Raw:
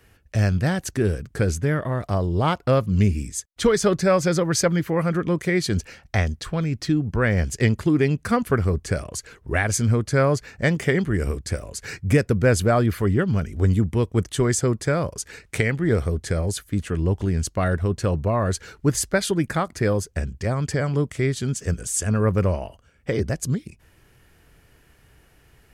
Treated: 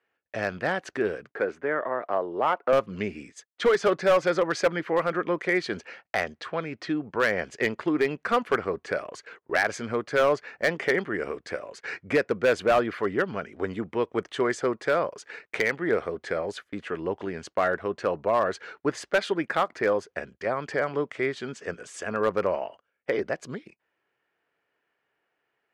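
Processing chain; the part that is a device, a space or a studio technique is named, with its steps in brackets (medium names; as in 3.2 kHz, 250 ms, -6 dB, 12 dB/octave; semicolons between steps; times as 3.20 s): walkie-talkie (band-pass 470–2500 Hz; hard clipper -17.5 dBFS, distortion -15 dB; gate -49 dBFS, range -17 dB); 1.30–2.73 s: three-band isolator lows -13 dB, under 220 Hz, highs -15 dB, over 2.5 kHz; trim +2.5 dB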